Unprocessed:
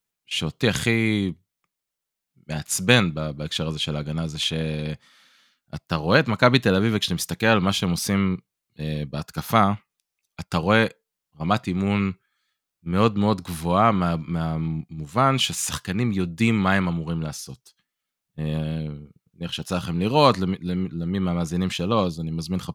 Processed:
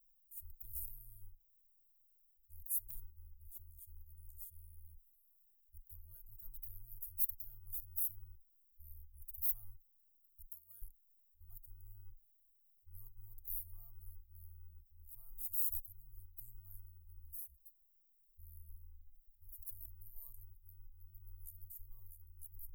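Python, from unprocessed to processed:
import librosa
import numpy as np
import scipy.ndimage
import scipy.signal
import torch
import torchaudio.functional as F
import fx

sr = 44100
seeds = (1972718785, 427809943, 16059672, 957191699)

y = fx.highpass(x, sr, hz=790.0, slope=6, at=(10.4, 10.81), fade=0.02)
y = scipy.signal.sosfilt(scipy.signal.cheby2(4, 80, [140.0, 4800.0], 'bandstop', fs=sr, output='sos'), y)
y = fx.low_shelf(y, sr, hz=130.0, db=8.0)
y = y + 0.4 * np.pad(y, (int(2.7 * sr / 1000.0), 0))[:len(y)]
y = y * 10.0 ** (17.0 / 20.0)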